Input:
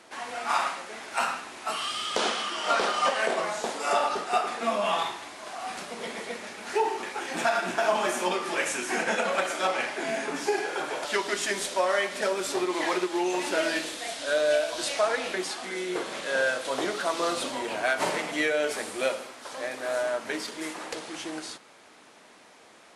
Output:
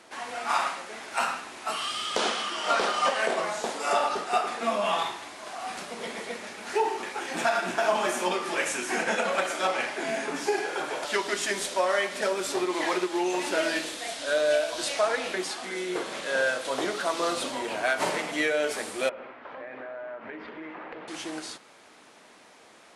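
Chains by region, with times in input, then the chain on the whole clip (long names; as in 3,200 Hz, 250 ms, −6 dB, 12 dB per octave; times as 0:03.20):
0:19.09–0:21.08: low-pass filter 2,400 Hz 24 dB per octave + downward compressor 5 to 1, threshold −36 dBFS
whole clip: no processing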